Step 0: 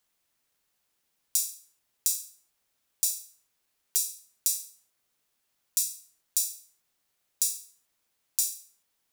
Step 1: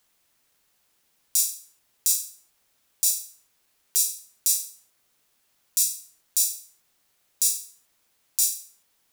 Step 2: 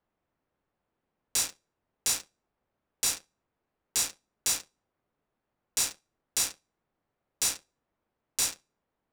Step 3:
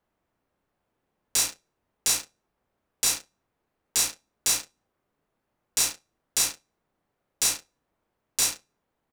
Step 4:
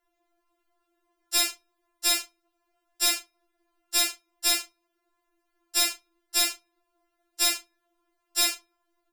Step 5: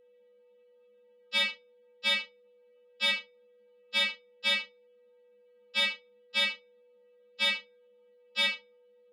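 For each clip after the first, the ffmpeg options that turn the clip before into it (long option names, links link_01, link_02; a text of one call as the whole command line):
ffmpeg -i in.wav -af "alimiter=level_in=9dB:limit=-1dB:release=50:level=0:latency=1,volume=-1dB" out.wav
ffmpeg -i in.wav -af "adynamicsmooth=sensitivity=6:basefreq=1100,volume=-1dB" out.wav
ffmpeg -i in.wav -filter_complex "[0:a]asplit=2[link_01][link_02];[link_02]adelay=33,volume=-7.5dB[link_03];[link_01][link_03]amix=inputs=2:normalize=0,volume=3.5dB" out.wav
ffmpeg -i in.wav -af "afftfilt=real='re*4*eq(mod(b,16),0)':imag='im*4*eq(mod(b,16),0)':win_size=2048:overlap=0.75,volume=6dB" out.wav
ffmpeg -i in.wav -af "highpass=frequency=330:width_type=q:width=0.5412,highpass=frequency=330:width_type=q:width=1.307,lowpass=frequency=3600:width_type=q:width=0.5176,lowpass=frequency=3600:width_type=q:width=0.7071,lowpass=frequency=3600:width_type=q:width=1.932,afreqshift=-130,aeval=exprs='val(0)+0.00158*sin(2*PI*490*n/s)':channel_layout=same,aexciter=amount=1.7:drive=9.5:freq=2100,volume=-3.5dB" out.wav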